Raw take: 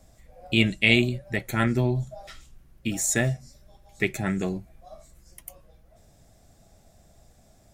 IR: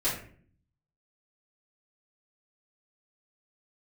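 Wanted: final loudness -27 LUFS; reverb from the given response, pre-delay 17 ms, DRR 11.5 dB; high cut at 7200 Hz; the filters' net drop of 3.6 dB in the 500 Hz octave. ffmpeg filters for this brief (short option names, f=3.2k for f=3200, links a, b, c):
-filter_complex "[0:a]lowpass=7.2k,equalizer=f=500:t=o:g=-5.5,asplit=2[a][b];[1:a]atrim=start_sample=2205,adelay=17[c];[b][c]afir=irnorm=-1:irlink=0,volume=-20.5dB[d];[a][d]amix=inputs=2:normalize=0,volume=-1.5dB"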